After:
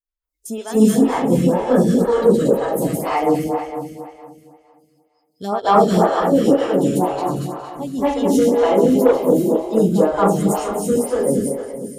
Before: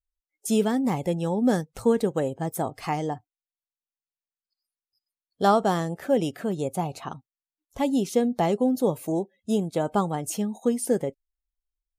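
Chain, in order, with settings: regenerating reverse delay 0.115 s, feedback 71%, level -4 dB; thin delay 0.405 s, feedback 37%, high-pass 4800 Hz, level -14 dB; reverb RT60 0.45 s, pre-delay 0.215 s, DRR -11 dB; added harmonics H 5 -24 dB, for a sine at 5 dBFS; photocell phaser 2 Hz; gain -4 dB

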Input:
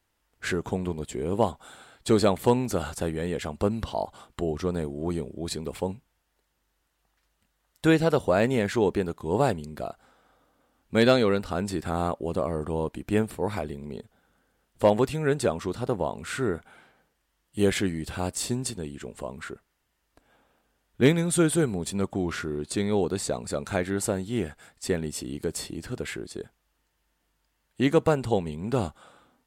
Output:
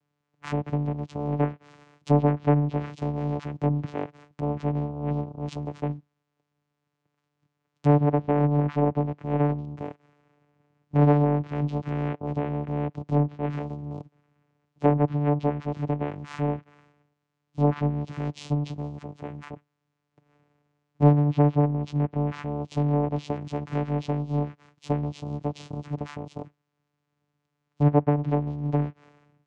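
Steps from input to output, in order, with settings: vocoder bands 4, saw 146 Hz; treble ducked by the level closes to 1700 Hz, closed at -20.5 dBFS; gain +2 dB

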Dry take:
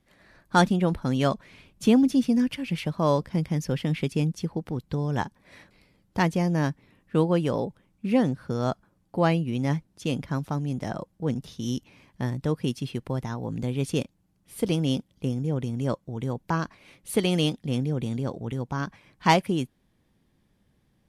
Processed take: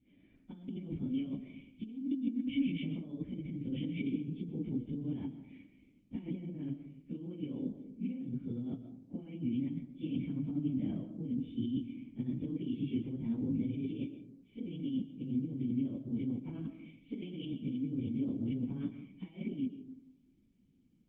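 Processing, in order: phase scrambler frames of 0.1 s; negative-ratio compressor -31 dBFS, ratio -1; vocal tract filter i; reverb RT60 0.70 s, pre-delay 85 ms, DRR 10 dB; Opus 48 kbps 48000 Hz

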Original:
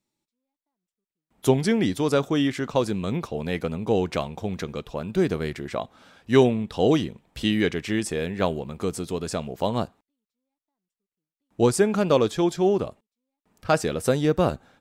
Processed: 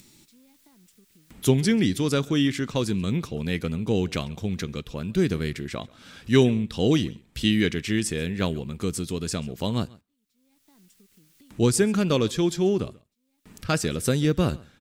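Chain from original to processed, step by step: bell 740 Hz -13.5 dB 1.7 oct; on a send: echo 0.136 s -23.5 dB; on the sum: upward compressor, threshold -38 dBFS; gain +4 dB

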